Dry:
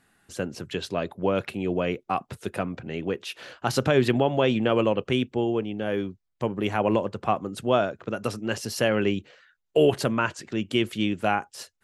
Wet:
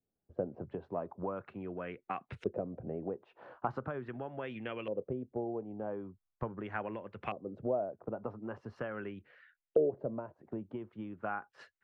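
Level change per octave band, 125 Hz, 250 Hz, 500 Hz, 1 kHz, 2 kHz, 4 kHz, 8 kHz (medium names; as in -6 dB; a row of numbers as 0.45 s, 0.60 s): -15.0 dB, -15.0 dB, -12.0 dB, -13.0 dB, -15.5 dB, -26.5 dB, under -35 dB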